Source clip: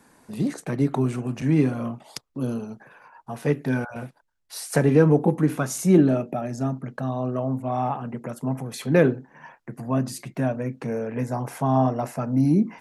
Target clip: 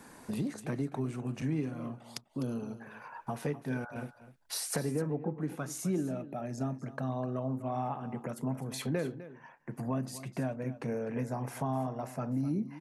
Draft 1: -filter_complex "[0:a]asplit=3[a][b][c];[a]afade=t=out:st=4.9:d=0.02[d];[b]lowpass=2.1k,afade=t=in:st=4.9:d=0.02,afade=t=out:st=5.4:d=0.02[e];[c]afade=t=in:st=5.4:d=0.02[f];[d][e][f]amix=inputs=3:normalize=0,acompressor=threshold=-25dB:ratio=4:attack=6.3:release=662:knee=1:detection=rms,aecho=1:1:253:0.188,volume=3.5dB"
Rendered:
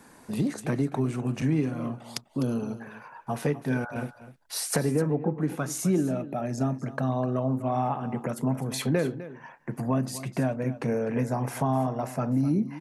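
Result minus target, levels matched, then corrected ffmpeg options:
compressor: peak gain reduction -7.5 dB
-filter_complex "[0:a]asplit=3[a][b][c];[a]afade=t=out:st=4.9:d=0.02[d];[b]lowpass=2.1k,afade=t=in:st=4.9:d=0.02,afade=t=out:st=5.4:d=0.02[e];[c]afade=t=in:st=5.4:d=0.02[f];[d][e][f]amix=inputs=3:normalize=0,acompressor=threshold=-35dB:ratio=4:attack=6.3:release=662:knee=1:detection=rms,aecho=1:1:253:0.188,volume=3.5dB"

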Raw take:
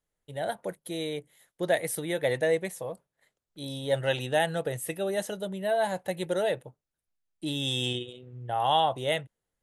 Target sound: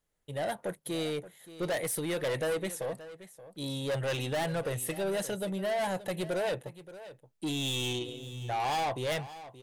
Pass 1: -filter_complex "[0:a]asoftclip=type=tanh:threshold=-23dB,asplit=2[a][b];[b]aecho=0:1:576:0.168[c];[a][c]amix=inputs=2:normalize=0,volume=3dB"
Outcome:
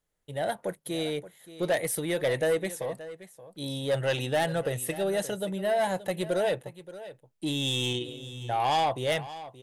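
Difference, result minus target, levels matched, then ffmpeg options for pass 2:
soft clip: distortion -6 dB
-filter_complex "[0:a]asoftclip=type=tanh:threshold=-31dB,asplit=2[a][b];[b]aecho=0:1:576:0.168[c];[a][c]amix=inputs=2:normalize=0,volume=3dB"

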